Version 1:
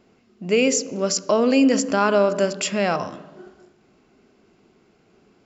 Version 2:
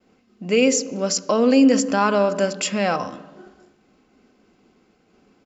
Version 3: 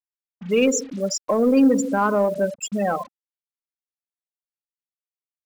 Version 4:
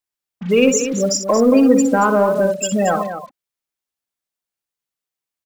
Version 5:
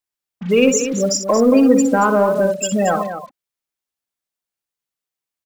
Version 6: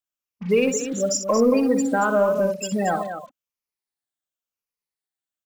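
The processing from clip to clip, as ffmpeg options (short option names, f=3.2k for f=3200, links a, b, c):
-af "agate=range=-33dB:threshold=-56dB:ratio=3:detection=peak,aecho=1:1:3.9:0.34"
-af "afftfilt=real='re*gte(hypot(re,im),0.2)':imag='im*gte(hypot(re,im),0.2)':win_size=1024:overlap=0.75,aeval=exprs='0.501*(cos(1*acos(clip(val(0)/0.501,-1,1)))-cos(1*PI/2))+0.0158*(cos(5*acos(clip(val(0)/0.501,-1,1)))-cos(5*PI/2))':c=same,acrusher=bits=6:mix=0:aa=0.5,volume=-1.5dB"
-filter_complex "[0:a]asplit=2[a][b];[b]acompressor=threshold=-25dB:ratio=6,volume=-0.5dB[c];[a][c]amix=inputs=2:normalize=0,aecho=1:1:61.22|227.4:0.355|0.316,volume=2dB"
-af anull
-af "afftfilt=real='re*pow(10,7/40*sin(2*PI*(0.85*log(max(b,1)*sr/1024/100)/log(2)-(-0.93)*(pts-256)/sr)))':imag='im*pow(10,7/40*sin(2*PI*(0.85*log(max(b,1)*sr/1024/100)/log(2)-(-0.93)*(pts-256)/sr)))':win_size=1024:overlap=0.75,volume=-6dB"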